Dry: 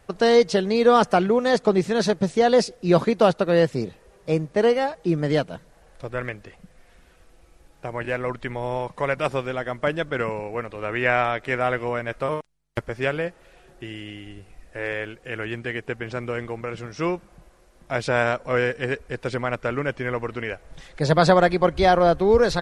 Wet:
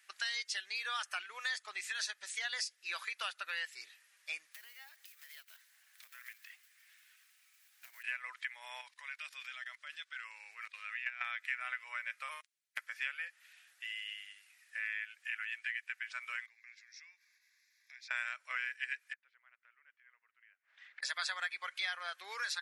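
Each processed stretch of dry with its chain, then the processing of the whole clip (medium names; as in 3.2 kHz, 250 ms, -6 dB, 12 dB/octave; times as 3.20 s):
4.52–8.04 s: block-companded coder 5-bit + bass shelf 200 Hz -11.5 dB + compression 5:1, threshold -40 dBFS
8.81–11.21 s: peaking EQ 4.3 kHz +6 dB 1.3 oct + level held to a coarse grid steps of 18 dB
16.46–18.11 s: high-order bell 760 Hz -11 dB 1.1 oct + static phaser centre 2 kHz, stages 8 + compression, threshold -45 dBFS
19.13–21.03 s: low-pass 1.8 kHz + inverted gate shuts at -25 dBFS, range -25 dB
whole clip: Chebyshev high-pass 1.8 kHz, order 3; spectral noise reduction 7 dB; compression 3:1, threshold -43 dBFS; trim +4.5 dB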